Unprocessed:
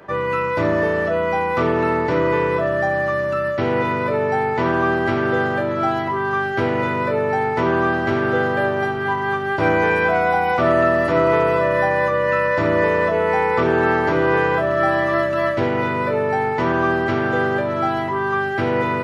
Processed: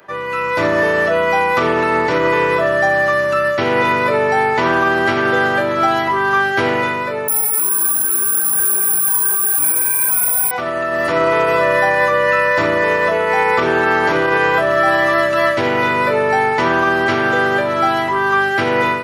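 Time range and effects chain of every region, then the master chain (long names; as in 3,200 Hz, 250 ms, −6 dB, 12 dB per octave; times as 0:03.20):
0:07.28–0:10.51: comb filter 0.8 ms, depth 70% + bad sample-rate conversion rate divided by 4×, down filtered, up zero stuff + string-ensemble chorus
whole clip: brickwall limiter −10.5 dBFS; spectral tilt +2.5 dB per octave; automatic gain control gain up to 9 dB; level −1.5 dB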